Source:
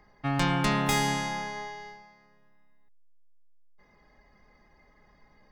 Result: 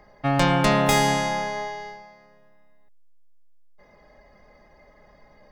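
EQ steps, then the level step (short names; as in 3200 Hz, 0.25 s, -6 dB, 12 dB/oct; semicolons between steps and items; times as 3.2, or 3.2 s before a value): bell 590 Hz +10.5 dB 0.49 oct; +5.0 dB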